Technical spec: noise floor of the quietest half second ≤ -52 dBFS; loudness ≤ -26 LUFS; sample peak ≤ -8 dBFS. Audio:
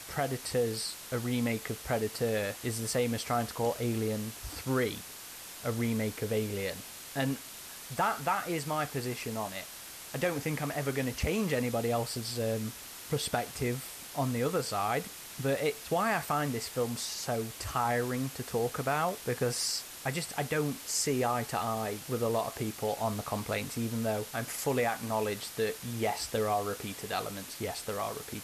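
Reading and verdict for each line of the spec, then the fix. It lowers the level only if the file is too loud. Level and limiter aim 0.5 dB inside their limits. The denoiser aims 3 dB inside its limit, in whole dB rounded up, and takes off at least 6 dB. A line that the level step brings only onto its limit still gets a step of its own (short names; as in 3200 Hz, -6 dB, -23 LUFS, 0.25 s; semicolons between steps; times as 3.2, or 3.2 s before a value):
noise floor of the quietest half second -46 dBFS: fail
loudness -33.0 LUFS: OK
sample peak -18.0 dBFS: OK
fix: denoiser 9 dB, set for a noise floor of -46 dBFS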